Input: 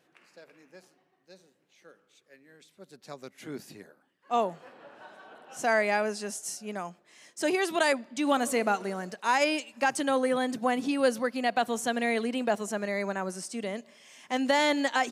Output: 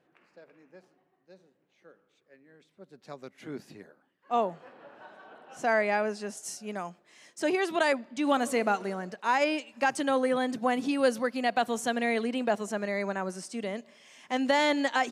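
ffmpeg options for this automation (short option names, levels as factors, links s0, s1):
-af "asetnsamples=n=441:p=0,asendcmd='2.96 lowpass f 2900;6.37 lowpass f 7800;7.4 lowpass f 3600;8.24 lowpass f 5800;8.95 lowpass f 2900;9.72 lowpass f 5800;10.71 lowpass f 10000;11.94 lowpass f 5800',lowpass=f=1400:p=1"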